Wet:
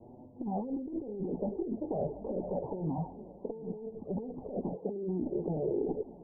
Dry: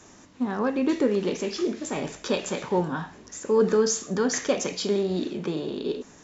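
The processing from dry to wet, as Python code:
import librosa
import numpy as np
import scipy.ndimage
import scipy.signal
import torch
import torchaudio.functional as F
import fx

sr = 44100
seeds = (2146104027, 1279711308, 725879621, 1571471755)

y = fx.diode_clip(x, sr, knee_db=-17.5)
y = fx.env_flanger(y, sr, rest_ms=9.3, full_db=-20.5)
y = fx.highpass(y, sr, hz=190.0, slope=12, at=(4.76, 5.21))
y = fx.over_compress(y, sr, threshold_db=-35.0, ratio=-1.0)
y = scipy.signal.sosfilt(scipy.signal.butter(12, 860.0, 'lowpass', fs=sr, output='sos'), y)
y = y + 10.0 ** (-21.0 / 20.0) * np.pad(y, (int(735 * sr / 1000.0), 0))[:len(y)]
y = fx.band_squash(y, sr, depth_pct=70, at=(2.01, 2.98))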